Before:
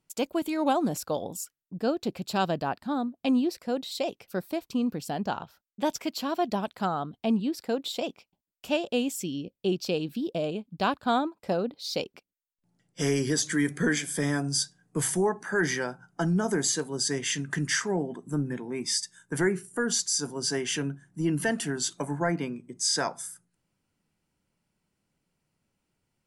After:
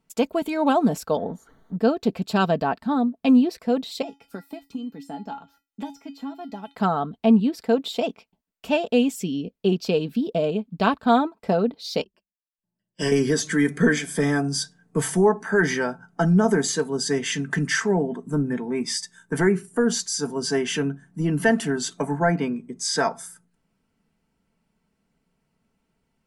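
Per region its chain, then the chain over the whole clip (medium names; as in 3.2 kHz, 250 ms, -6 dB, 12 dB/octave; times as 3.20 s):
1.17–1.76 s: jump at every zero crossing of -46.5 dBFS + boxcar filter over 17 samples
4.02–6.75 s: feedback comb 280 Hz, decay 0.2 s, harmonics odd, mix 90% + three bands compressed up and down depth 100%
12.01–13.12 s: rippled EQ curve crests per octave 1.3, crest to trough 14 dB + upward expansion 2.5:1, over -40 dBFS
whole clip: treble shelf 3.4 kHz -9 dB; comb 4.5 ms, depth 49%; trim +6 dB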